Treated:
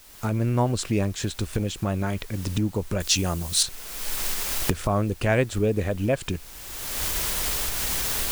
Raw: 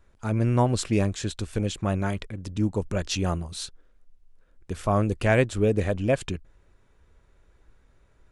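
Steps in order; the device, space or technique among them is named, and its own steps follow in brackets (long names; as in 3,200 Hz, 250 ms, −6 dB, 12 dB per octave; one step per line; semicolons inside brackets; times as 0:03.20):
cheap recorder with automatic gain (white noise bed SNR 24 dB; camcorder AGC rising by 31 dB per second)
0:03.00–0:03.63: high-shelf EQ 3,600 Hz +11 dB
level −1 dB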